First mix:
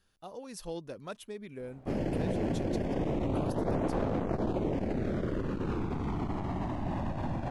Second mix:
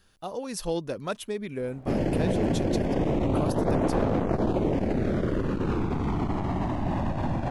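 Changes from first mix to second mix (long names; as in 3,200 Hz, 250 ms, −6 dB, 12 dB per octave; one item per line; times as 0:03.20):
speech +10.0 dB
background +6.0 dB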